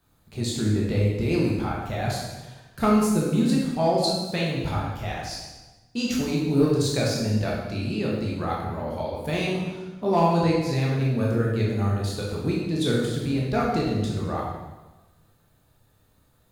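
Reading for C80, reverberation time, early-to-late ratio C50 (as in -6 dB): 3.5 dB, 1.2 s, 0.5 dB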